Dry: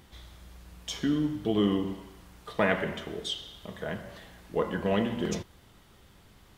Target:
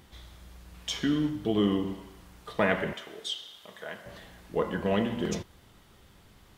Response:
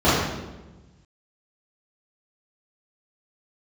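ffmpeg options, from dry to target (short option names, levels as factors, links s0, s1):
-filter_complex "[0:a]asettb=1/sr,asplit=3[s0][s1][s2];[s0]atrim=end=0.744[s3];[s1]atrim=start=0.74:end=1.3,asetpts=PTS-STARTPTS,afade=t=in:d=0.004:c=qsin,afade=t=out:st=0.556:d=0.004:c=qsin,equalizer=f=2400:w=0.59:g=4.5[s4];[s2]atrim=start=1.296[s5];[s3][s4]acrossfade=d=0.004:c1=hsin:c2=qsin[s6];[s6][s5]acrossfade=d=0.004:c1=qsin:c2=hsin,asettb=1/sr,asplit=3[s7][s8][s9];[s7]atrim=end=2.934[s10];[s8]atrim=start=2.93:end=4.06,asetpts=PTS-STARTPTS,afade=t=in:d=0.004:c=qsin,afade=t=out:st=1.126:d=0.004:c=qsin,highpass=f=890:p=1[s11];[s9]atrim=start=4.056[s12];[s10][s11]acrossfade=d=0.004:c1=hsin:c2=qsin[s13];[s13][s12]acrossfade=d=0.004:c1=qsin:c2=hsin"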